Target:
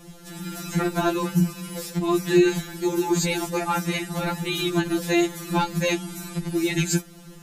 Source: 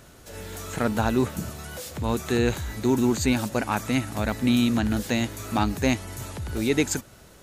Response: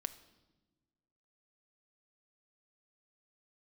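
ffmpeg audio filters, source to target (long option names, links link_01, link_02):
-af "lowshelf=frequency=360:width_type=q:width=1.5:gain=6.5,afftfilt=real='re*2.83*eq(mod(b,8),0)':imag='im*2.83*eq(mod(b,8),0)':win_size=2048:overlap=0.75,volume=5dB"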